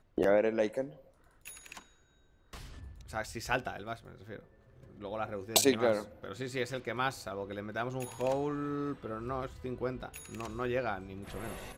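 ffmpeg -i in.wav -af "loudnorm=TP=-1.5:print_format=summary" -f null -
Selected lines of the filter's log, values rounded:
Input Integrated:    -35.1 LUFS
Input True Peak:     -10.8 dBTP
Input LRA:             8.2 LU
Input Threshold:     -46.0 LUFS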